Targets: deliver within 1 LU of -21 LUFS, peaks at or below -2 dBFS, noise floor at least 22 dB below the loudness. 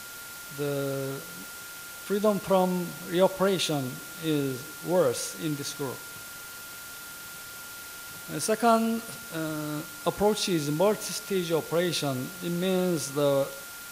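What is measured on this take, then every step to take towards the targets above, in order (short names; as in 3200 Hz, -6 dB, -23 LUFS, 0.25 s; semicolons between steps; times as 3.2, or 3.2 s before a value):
steady tone 1400 Hz; tone level -44 dBFS; noise floor -42 dBFS; noise floor target -50 dBFS; loudness -28.0 LUFS; peak -9.5 dBFS; loudness target -21.0 LUFS
-> notch 1400 Hz, Q 30; denoiser 8 dB, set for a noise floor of -42 dBFS; gain +7 dB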